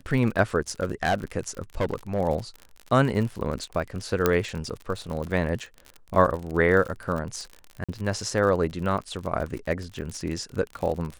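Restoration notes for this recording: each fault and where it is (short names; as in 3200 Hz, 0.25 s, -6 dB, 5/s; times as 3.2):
crackle 53/s -31 dBFS
0.82–1.24 clipped -18 dBFS
1.8–2.2 clipped -20.5 dBFS
4.26 pop -6 dBFS
7.84–7.89 gap 46 ms
10.01–10.02 gap 9 ms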